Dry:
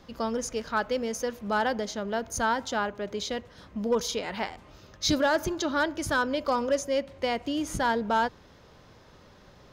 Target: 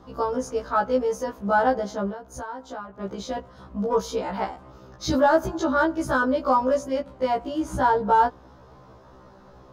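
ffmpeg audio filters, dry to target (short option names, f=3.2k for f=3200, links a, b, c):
-filter_complex "[0:a]highshelf=f=1.6k:t=q:w=1.5:g=-9,asettb=1/sr,asplit=3[a][b][c];[a]atrim=end=2.104[d];[b]atrim=start=2.1:end=3.01,asetpts=PTS-STARTPTS,afade=t=in:d=0.004:c=qsin,afade=t=out:st=0.906:d=0.004:c=qsin,acompressor=threshold=-39dB:ratio=4[e];[c]atrim=start=3.006[f];[d][e]acrossfade=d=0.004:c1=hsin:c2=qsin[g];[g][f]acrossfade=d=0.004:c1=qsin:c2=hsin,afftfilt=real='re*1.73*eq(mod(b,3),0)':imag='im*1.73*eq(mod(b,3),0)':win_size=2048:overlap=0.75,volume=7dB"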